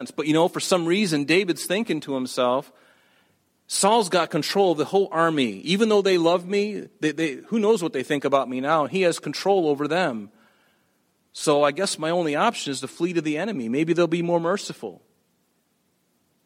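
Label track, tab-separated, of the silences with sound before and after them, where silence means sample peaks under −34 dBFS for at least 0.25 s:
2.610000	3.700000	silence
10.240000	11.350000	silence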